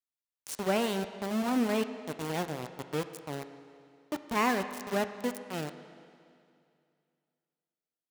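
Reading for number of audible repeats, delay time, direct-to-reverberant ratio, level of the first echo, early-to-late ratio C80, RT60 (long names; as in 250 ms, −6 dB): no echo audible, no echo audible, 9.5 dB, no echo audible, 11.5 dB, 2.4 s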